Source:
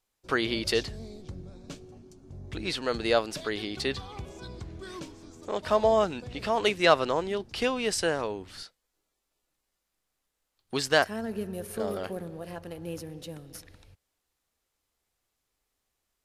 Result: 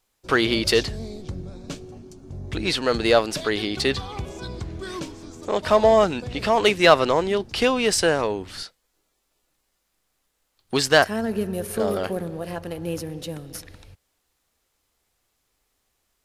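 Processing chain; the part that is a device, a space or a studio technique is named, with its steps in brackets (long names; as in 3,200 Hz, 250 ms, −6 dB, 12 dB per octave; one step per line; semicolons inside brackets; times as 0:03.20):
parallel distortion (in parallel at −7 dB: hard clipping −24.5 dBFS, distortion −6 dB)
on the sum: level +5 dB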